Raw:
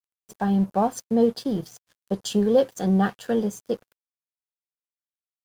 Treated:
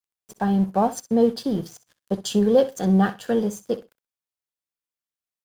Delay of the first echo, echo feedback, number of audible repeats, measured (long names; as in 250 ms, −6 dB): 63 ms, 16%, 2